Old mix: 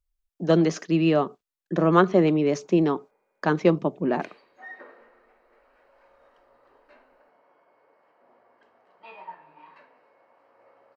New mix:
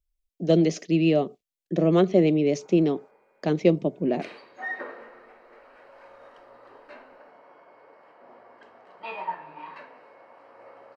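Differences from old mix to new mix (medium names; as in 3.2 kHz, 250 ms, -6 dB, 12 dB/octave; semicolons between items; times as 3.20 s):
speech: add high-order bell 1.2 kHz -13.5 dB 1.2 oct; background +9.5 dB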